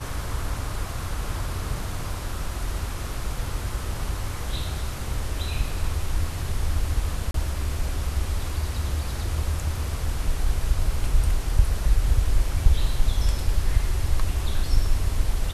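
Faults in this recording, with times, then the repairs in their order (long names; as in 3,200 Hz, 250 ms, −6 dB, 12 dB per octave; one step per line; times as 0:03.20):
0:07.31–0:07.34: drop-out 33 ms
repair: repair the gap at 0:07.31, 33 ms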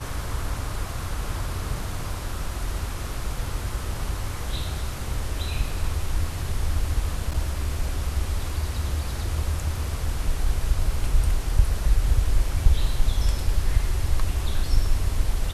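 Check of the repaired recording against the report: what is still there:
none of them is left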